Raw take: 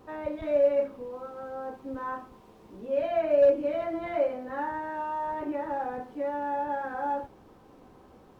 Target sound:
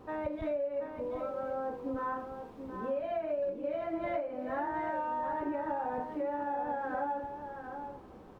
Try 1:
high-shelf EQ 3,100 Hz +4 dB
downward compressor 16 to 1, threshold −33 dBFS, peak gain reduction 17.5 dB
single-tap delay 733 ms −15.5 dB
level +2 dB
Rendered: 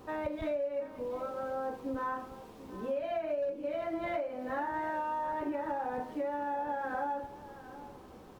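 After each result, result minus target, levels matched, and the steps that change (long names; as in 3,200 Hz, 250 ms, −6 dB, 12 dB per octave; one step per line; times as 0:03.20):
4,000 Hz band +5.0 dB; echo-to-direct −7.5 dB
change: high-shelf EQ 3,100 Hz −7.5 dB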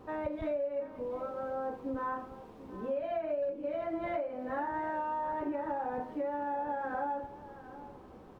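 echo-to-direct −7.5 dB
change: single-tap delay 733 ms −8 dB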